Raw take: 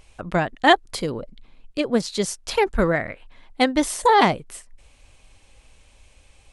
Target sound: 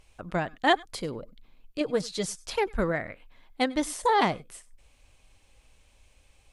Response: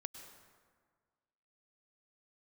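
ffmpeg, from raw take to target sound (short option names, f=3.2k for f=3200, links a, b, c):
-filter_complex "[0:a]asettb=1/sr,asplit=3[a][b][c];[a]atrim=end=1.804[d];[b]atrim=start=1.8:end=2.47,asetpts=PTS-STARTPTS,afade=t=in:d=0.004:c=qsin,afade=t=out:st=0.666:d=0.004:c=qsin,aecho=1:1:6.5:0.63,atrim=end_sample=29547[e];[c]atrim=start=2.466[f];[d][e]acrossfade=d=0.004:c1=hsin:c2=qsin[g];[g][f]acrossfade=d=0.004:c1=qsin:c2=hsin[h];[1:a]atrim=start_sample=2205,atrim=end_sample=4410[i];[h][i]afir=irnorm=-1:irlink=0,volume=-3dB" -ar 48000 -c:a mp2 -b:a 192k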